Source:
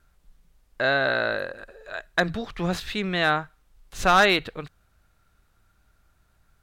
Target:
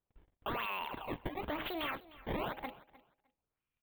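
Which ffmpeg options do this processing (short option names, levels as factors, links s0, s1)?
-af "bandreject=f=60:t=h:w=6,bandreject=f=120:t=h:w=6,bandreject=f=180:t=h:w=6,bandreject=f=240:t=h:w=6,bandreject=f=300:t=h:w=6,bandreject=f=360:t=h:w=6,bandreject=f=420:t=h:w=6,bandreject=f=480:t=h:w=6,agate=range=0.0501:threshold=0.00178:ratio=16:detection=peak,lowshelf=f=160:g=-11,acompressor=threshold=0.0178:ratio=10,acrusher=samples=33:mix=1:aa=0.000001:lfo=1:lforange=52.8:lforate=0.58,asoftclip=type=tanh:threshold=0.0224,asuperstop=centerf=4200:order=12:qfactor=0.7,aecho=1:1:529|1058:0.106|0.018,asetrate=76440,aresample=44100,volume=1.5"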